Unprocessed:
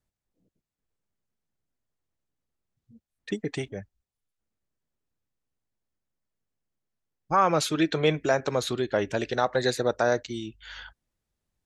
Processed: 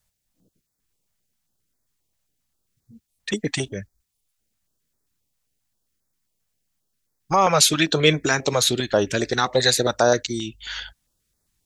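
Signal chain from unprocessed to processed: high shelf 2800 Hz +10 dB; stepped notch 7.5 Hz 310–2900 Hz; gain +6.5 dB

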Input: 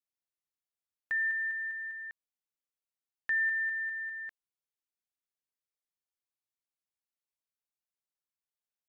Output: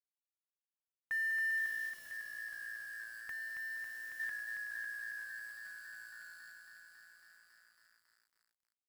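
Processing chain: high shelf 2100 Hz -7 dB; frequency-shifting echo 0.472 s, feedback 59%, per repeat -57 Hz, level -17 dB; limiter -39.5 dBFS, peak gain reduction 12 dB; 1.89–4.2 compressor 3:1, threshold -53 dBFS, peak gain reduction 8.5 dB; bell 400 Hz -13.5 dB 1 oct; companded quantiser 6-bit; lo-fi delay 0.275 s, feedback 80%, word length 13-bit, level -5 dB; gain +8.5 dB

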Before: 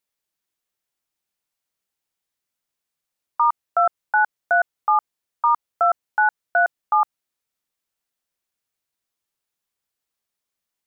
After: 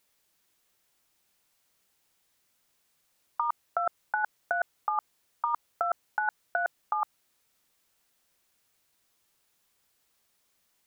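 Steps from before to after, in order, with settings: negative-ratio compressor -24 dBFS, ratio -0.5

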